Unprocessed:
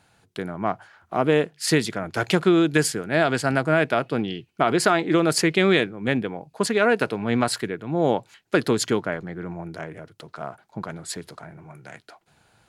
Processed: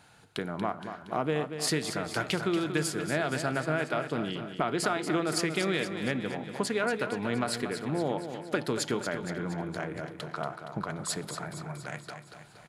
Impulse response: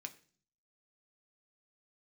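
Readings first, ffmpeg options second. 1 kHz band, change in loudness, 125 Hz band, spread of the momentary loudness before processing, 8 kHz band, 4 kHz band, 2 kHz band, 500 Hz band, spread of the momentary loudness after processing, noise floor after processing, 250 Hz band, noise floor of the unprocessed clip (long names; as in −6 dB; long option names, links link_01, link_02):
−7.5 dB, −9.0 dB, −7.0 dB, 17 LU, −5.5 dB, −6.5 dB, −7.5 dB, −9.0 dB, 10 LU, −52 dBFS, −8.5 dB, −66 dBFS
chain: -filter_complex "[0:a]acompressor=threshold=-34dB:ratio=2.5,aecho=1:1:234|468|702|936|1170|1404|1638:0.355|0.202|0.115|0.0657|0.0375|0.0213|0.0122,asplit=2[link_01][link_02];[1:a]atrim=start_sample=2205,asetrate=25137,aresample=44100[link_03];[link_02][link_03]afir=irnorm=-1:irlink=0,volume=-6.5dB[link_04];[link_01][link_04]amix=inputs=2:normalize=0,aresample=32000,aresample=44100"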